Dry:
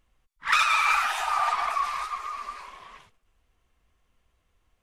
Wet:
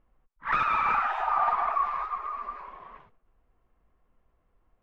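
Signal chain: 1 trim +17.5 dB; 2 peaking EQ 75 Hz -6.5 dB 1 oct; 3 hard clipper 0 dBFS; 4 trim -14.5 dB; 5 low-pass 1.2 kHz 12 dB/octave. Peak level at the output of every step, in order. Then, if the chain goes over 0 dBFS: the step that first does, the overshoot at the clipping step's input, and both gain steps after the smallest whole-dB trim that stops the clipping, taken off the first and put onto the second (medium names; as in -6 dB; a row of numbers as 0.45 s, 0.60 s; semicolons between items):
+8.0 dBFS, +8.0 dBFS, 0.0 dBFS, -14.5 dBFS, -15.0 dBFS; step 1, 8.0 dB; step 1 +9.5 dB, step 4 -6.5 dB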